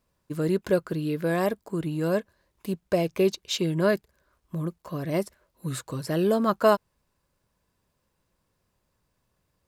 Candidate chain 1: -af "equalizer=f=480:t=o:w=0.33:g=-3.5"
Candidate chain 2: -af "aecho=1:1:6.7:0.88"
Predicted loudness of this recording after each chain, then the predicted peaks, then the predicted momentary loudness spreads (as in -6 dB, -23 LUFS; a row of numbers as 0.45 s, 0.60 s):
-27.5 LUFS, -25.0 LUFS; -8.0 dBFS, -6.5 dBFS; 12 LU, 11 LU